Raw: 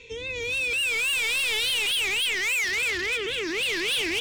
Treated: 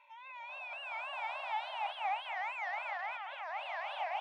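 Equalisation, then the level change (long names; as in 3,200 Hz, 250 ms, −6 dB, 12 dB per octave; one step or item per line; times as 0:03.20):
linear-phase brick-wall high-pass 570 Hz
low-pass with resonance 780 Hz, resonance Q 4.2
+1.0 dB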